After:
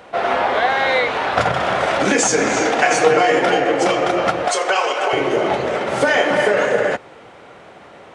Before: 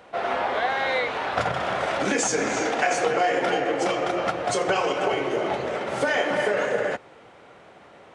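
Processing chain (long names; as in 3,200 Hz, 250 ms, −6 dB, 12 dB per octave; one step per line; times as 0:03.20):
0:02.85–0:03.41: comb filter 6.5 ms, depth 55%
0:04.48–0:05.13: high-pass filter 590 Hz 12 dB per octave
level +7.5 dB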